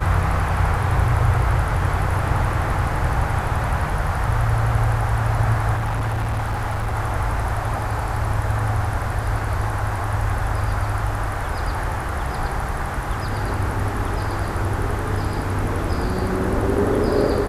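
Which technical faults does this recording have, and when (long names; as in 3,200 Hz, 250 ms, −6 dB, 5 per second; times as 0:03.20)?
0:05.75–0:06.95: clipping −19.5 dBFS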